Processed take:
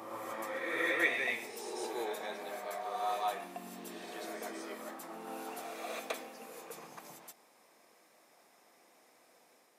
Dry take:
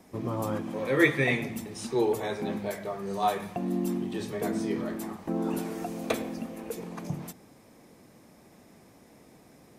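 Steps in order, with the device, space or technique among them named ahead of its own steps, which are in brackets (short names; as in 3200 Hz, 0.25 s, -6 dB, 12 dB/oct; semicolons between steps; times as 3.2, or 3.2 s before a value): ghost voice (reverse; reverb RT60 1.7 s, pre-delay 0.118 s, DRR -0.5 dB; reverse; HPF 640 Hz 12 dB/oct); gain -6.5 dB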